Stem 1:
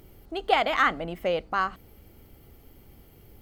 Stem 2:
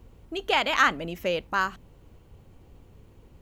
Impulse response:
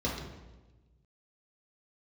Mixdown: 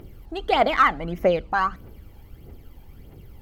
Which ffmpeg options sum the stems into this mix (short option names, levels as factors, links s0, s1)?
-filter_complex "[0:a]highshelf=f=6100:g=-8.5,aphaser=in_gain=1:out_gain=1:delay=1.3:decay=0.62:speed=1.6:type=triangular,volume=1.19[s0];[1:a]acompressor=threshold=0.0141:ratio=2,volume=0.631,asplit=2[s1][s2];[s2]volume=0.0841[s3];[2:a]atrim=start_sample=2205[s4];[s3][s4]afir=irnorm=-1:irlink=0[s5];[s0][s1][s5]amix=inputs=3:normalize=0"